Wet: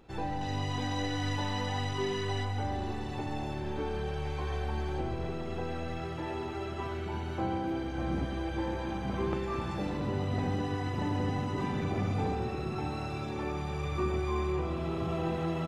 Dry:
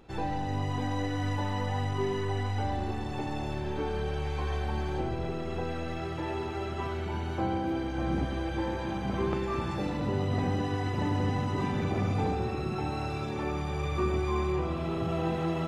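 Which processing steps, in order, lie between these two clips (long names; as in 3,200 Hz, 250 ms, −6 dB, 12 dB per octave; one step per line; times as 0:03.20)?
0:00.41–0:02.45: parametric band 4,300 Hz +9 dB 1.9 octaves
single-tap delay 723 ms −14.5 dB
level −2.5 dB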